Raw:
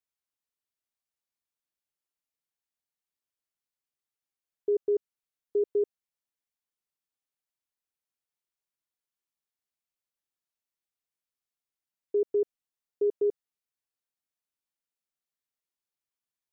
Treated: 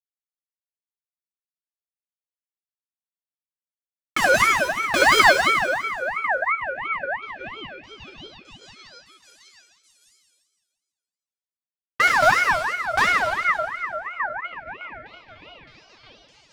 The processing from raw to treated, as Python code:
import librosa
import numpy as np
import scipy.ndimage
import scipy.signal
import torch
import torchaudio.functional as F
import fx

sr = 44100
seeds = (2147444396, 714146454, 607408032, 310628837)

y = np.where(x < 0.0, 10.0 ** (-3.0 / 20.0) * x, x)
y = fx.doppler_pass(y, sr, speed_mps=38, closest_m=11.0, pass_at_s=6.04)
y = fx.peak_eq(y, sr, hz=500.0, db=10.5, octaves=0.62)
y = fx.level_steps(y, sr, step_db=16)
y = fx.fuzz(y, sr, gain_db=61.0, gate_db=-58.0)
y = fx.power_curve(y, sr, exponent=1.4)
y = fx.echo_stepped(y, sr, ms=612, hz=250.0, octaves=0.7, feedback_pct=70, wet_db=-5.5)
y = fx.rev_plate(y, sr, seeds[0], rt60_s=2.1, hf_ratio=0.85, predelay_ms=0, drr_db=-6.0)
y = fx.ring_lfo(y, sr, carrier_hz=1400.0, swing_pct=30, hz=2.9)
y = y * librosa.db_to_amplitude(1.0)